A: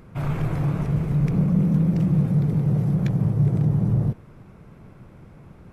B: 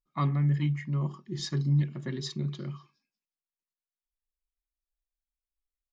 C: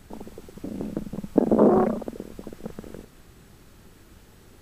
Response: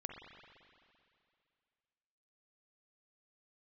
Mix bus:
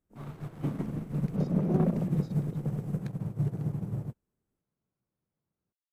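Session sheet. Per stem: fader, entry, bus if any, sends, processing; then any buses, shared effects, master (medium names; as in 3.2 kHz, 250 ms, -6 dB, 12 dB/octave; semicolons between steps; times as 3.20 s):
-3.0 dB, 0.00 s, no bus, no send, bass shelf 94 Hz -10.5 dB; sliding maximum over 9 samples
-16.0 dB, 0.00 s, bus A, no send, none
-1.5 dB, 0.00 s, bus A, no send, single-diode clipper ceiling -16 dBFS; ten-band graphic EQ 250 Hz +4 dB, 1 kHz -4 dB, 2 kHz -4 dB, 4 kHz -12 dB
bus A: 0.0 dB, compressor with a negative ratio -23 dBFS, ratio -0.5; peak limiter -20.5 dBFS, peak gain reduction 9.5 dB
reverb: none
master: upward expansion 2.5:1, over -45 dBFS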